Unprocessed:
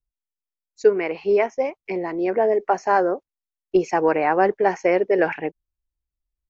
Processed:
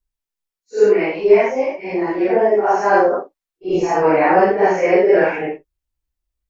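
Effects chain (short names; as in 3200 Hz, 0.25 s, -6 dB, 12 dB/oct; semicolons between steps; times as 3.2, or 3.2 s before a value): phase scrambler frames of 0.2 s; 3.12–4.02 bell 1600 Hz +7 dB -> -3.5 dB 2.6 oct; gain +5.5 dB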